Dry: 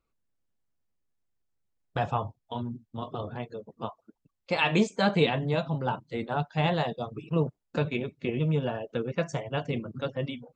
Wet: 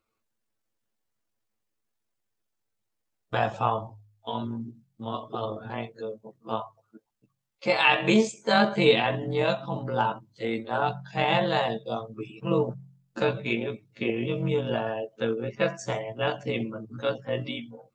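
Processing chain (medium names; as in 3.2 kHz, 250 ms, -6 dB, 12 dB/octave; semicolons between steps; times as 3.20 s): bass shelf 180 Hz -9.5 dB; hum notches 50/100/150 Hz; granular stretch 1.7×, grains 44 ms; trim +5.5 dB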